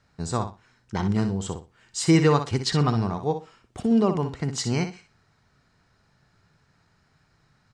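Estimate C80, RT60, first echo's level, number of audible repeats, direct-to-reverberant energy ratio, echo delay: none, none, -9.0 dB, 2, none, 61 ms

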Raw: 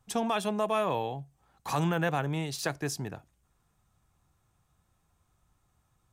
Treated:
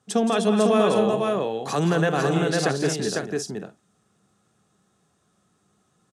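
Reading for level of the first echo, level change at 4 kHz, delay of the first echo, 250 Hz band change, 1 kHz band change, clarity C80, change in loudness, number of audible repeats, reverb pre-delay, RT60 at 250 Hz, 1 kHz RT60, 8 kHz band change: -9.5 dB, +8.5 dB, 0.171 s, +11.0 dB, +5.5 dB, none, +8.5 dB, 4, none, none, none, +8.5 dB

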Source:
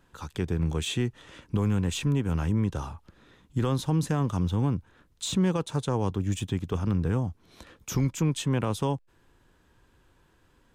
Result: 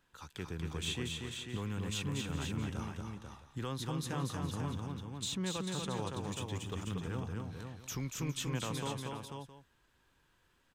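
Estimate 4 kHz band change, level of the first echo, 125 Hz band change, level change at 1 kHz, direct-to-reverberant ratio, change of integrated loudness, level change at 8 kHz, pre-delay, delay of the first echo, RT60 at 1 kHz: -3.0 dB, -4.0 dB, -11.5 dB, -7.5 dB, none, -10.5 dB, -4.5 dB, none, 0.236 s, none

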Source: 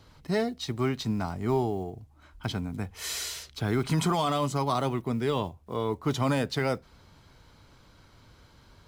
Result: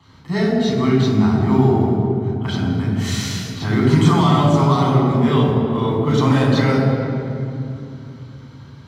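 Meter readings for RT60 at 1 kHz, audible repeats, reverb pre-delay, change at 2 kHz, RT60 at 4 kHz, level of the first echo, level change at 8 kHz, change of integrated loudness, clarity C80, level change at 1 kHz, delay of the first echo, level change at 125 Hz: 2.6 s, none, 3 ms, +9.5 dB, 1.7 s, none, +4.5 dB, +12.5 dB, 1.5 dB, +10.0 dB, none, +15.5 dB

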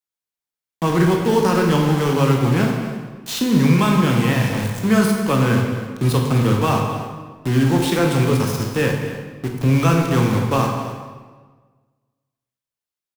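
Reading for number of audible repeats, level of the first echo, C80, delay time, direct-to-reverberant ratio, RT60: 1, -13.5 dB, 4.5 dB, 0.256 s, 0.5 dB, 1.4 s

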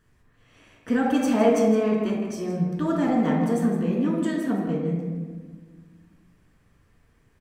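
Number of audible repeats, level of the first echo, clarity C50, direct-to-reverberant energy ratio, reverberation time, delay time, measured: 1, -10.5 dB, 1.0 dB, -3.0 dB, 1.5 s, 0.162 s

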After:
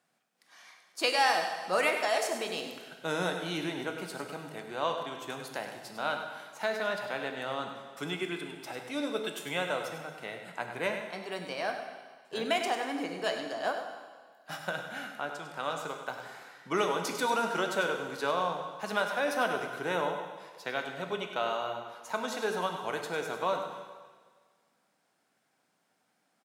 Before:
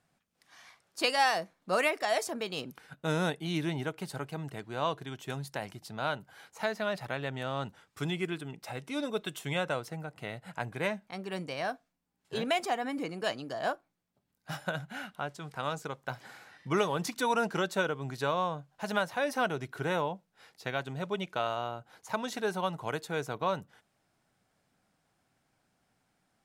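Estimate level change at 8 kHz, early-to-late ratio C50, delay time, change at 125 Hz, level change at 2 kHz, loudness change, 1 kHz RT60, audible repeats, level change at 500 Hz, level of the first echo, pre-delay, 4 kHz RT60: +1.5 dB, 5.0 dB, 0.1 s, -8.0 dB, +1.5 dB, +0.5 dB, 1.5 s, 1, +1.0 dB, -9.5 dB, 9 ms, 1.6 s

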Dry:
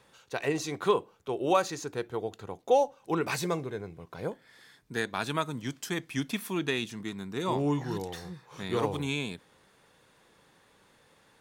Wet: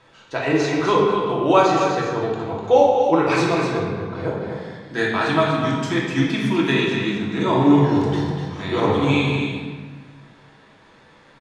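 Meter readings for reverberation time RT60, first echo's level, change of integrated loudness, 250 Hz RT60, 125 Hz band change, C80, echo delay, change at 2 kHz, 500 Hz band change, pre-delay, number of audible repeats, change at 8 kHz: 1.5 s, -6.5 dB, +12.0 dB, 1.8 s, +13.5 dB, 1.5 dB, 0.249 s, +12.0 dB, +11.5 dB, 3 ms, 1, +2.5 dB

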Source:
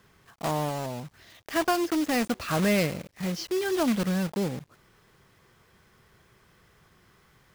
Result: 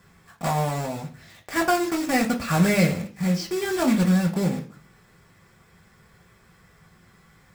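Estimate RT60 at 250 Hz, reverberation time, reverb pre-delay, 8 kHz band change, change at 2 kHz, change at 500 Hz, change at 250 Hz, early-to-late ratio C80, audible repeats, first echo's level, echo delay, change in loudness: 0.60 s, 0.45 s, 3 ms, +4.0 dB, +4.5 dB, +2.0 dB, +5.0 dB, 18.0 dB, none, none, none, +4.5 dB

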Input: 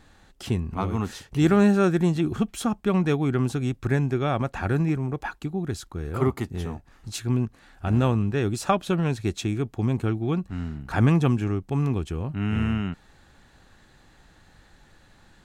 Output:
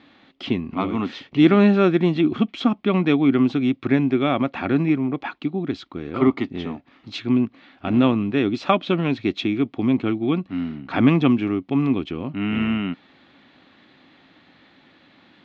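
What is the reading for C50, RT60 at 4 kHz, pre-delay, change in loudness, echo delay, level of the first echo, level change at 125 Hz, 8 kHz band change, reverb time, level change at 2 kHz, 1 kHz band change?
none, none, none, +4.0 dB, none, none, -3.0 dB, under -15 dB, none, +4.5 dB, +3.0 dB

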